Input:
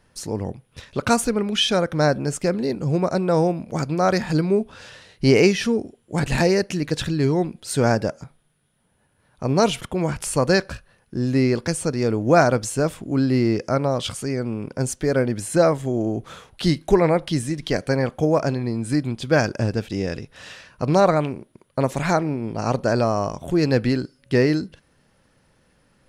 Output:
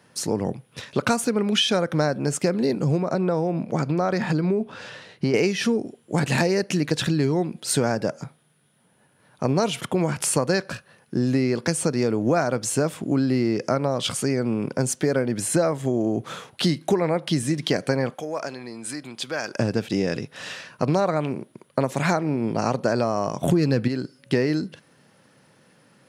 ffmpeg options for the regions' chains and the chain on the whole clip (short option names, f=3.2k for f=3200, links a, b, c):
-filter_complex "[0:a]asettb=1/sr,asplit=3[a][b][c];[a]atrim=end=3.024[d];[b]atrim=start=3.02:end=5.34,asetpts=PTS-STARTPTS,afade=t=in:d=0.004:c=qsin,afade=t=out:st=2.316:d=0.004:c=qsin,highshelf=f=5.2k:g=-10.5,acompressor=threshold=-21dB:ratio=4:attack=3.2:release=140:knee=1:detection=peak[e];[c]atrim=start=5.336[f];[d][e]acrossfade=d=0.004:c1=hsin:c2=qsin[g];[g][f]acrossfade=d=0.004:c1=qsin:c2=hsin,asettb=1/sr,asplit=3[h][i][j];[h]atrim=end=18.144[k];[i]atrim=start=18.14:end=19.59,asetpts=PTS-STARTPTS,afade=t=in:d=0.004:c=qsin,afade=t=out:st=1.446:d=0.004:c=qsin,acompressor=threshold=-27dB:ratio=2.5:attack=3.2:release=140:knee=1:detection=peak,highpass=f=930:p=1[l];[j]atrim=start=19.586[m];[k][l]acrossfade=d=0.004:c1=hsin:c2=qsin[n];[n][m]acrossfade=d=0.004:c1=qsin:c2=hsin,asettb=1/sr,asplit=3[o][p][q];[o]atrim=end=23.434[r];[p]atrim=start=23.43:end=23.88,asetpts=PTS-STARTPTS,afade=t=in:d=0.004:c=qsin,afade=t=out:st=0.446:d=0.004:c=qsin,acontrast=76,bass=f=250:g=6,treble=f=4k:g=1[s];[q]atrim=start=23.876[t];[r][s]acrossfade=d=0.004:c1=hsin:c2=qsin[u];[u][t]acrossfade=d=0.004:c1=qsin:c2=hsin,highpass=f=120:w=0.5412,highpass=f=120:w=1.3066,acompressor=threshold=-23dB:ratio=6,volume=5dB"